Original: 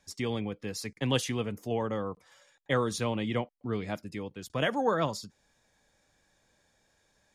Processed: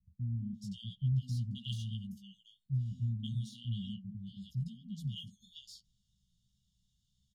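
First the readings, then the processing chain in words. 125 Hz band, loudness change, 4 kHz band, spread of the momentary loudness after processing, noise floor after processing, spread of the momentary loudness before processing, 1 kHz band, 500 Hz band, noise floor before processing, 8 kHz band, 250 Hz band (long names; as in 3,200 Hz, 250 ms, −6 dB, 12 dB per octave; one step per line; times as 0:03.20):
+2.0 dB, −6.5 dB, −8.5 dB, 17 LU, −79 dBFS, 11 LU, below −40 dB, below −40 dB, −71 dBFS, below −15 dB, −8.5 dB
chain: de-essing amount 90%
linear-phase brick-wall band-stop 230–2,800 Hz
bass and treble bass +4 dB, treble −9 dB
chorus effect 1.8 Hz, delay 15 ms, depth 2 ms
three-band delay without the direct sound lows, mids, highs 190/540 ms, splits 260/910 Hz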